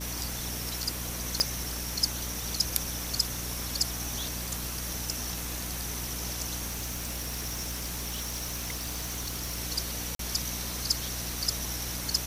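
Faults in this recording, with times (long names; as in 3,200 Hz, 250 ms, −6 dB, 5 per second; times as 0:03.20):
surface crackle 72 per second −38 dBFS
mains hum 60 Hz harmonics 5 −39 dBFS
0:01.40: click −10 dBFS
0:06.68–0:09.59: clipping −29.5 dBFS
0:10.15–0:10.19: drop-out 43 ms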